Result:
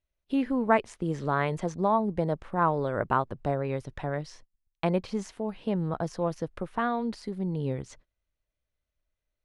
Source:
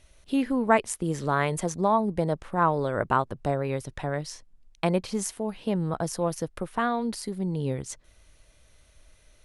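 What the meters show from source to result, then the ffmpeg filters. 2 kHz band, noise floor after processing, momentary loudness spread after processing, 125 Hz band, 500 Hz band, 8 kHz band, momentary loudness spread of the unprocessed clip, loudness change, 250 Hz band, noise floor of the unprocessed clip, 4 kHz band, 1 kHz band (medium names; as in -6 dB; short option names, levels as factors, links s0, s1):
-2.5 dB, under -85 dBFS, 8 LU, -1.5 dB, -1.5 dB, -14.5 dB, 8 LU, -2.0 dB, -1.5 dB, -59 dBFS, -6.0 dB, -2.0 dB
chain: -filter_complex "[0:a]agate=range=0.0562:threshold=0.00447:ratio=16:detection=peak,acrossover=split=7100[s0][s1];[s1]acompressor=threshold=0.00398:ratio=4:attack=1:release=60[s2];[s0][s2]amix=inputs=2:normalize=0,aemphasis=mode=reproduction:type=50fm,volume=0.794"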